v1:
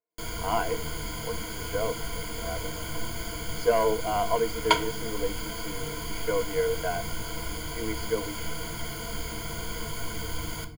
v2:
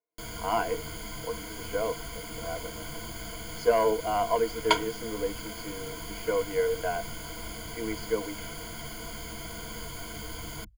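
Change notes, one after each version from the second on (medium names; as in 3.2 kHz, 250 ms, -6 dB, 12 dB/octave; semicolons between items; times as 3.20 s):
reverb: off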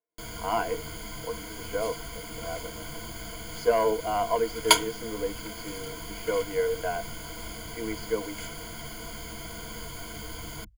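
second sound: remove tape spacing loss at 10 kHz 21 dB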